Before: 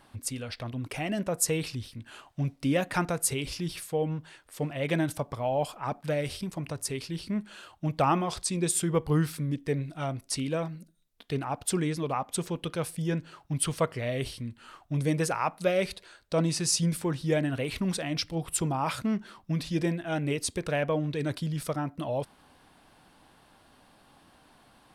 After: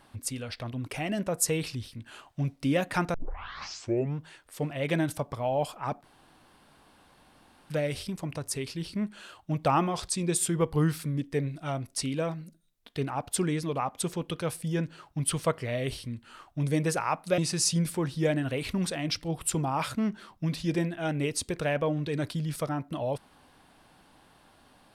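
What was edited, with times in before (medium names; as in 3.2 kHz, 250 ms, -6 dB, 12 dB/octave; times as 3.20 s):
3.14 s: tape start 1.05 s
6.04 s: insert room tone 1.66 s
15.72–16.45 s: delete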